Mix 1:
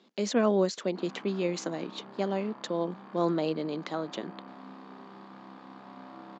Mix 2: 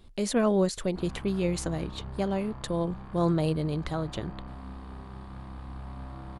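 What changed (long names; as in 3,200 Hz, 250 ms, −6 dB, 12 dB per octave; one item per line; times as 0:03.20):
speech: remove Butterworth low-pass 7,100 Hz 72 dB per octave
master: remove Butterworth high-pass 200 Hz 36 dB per octave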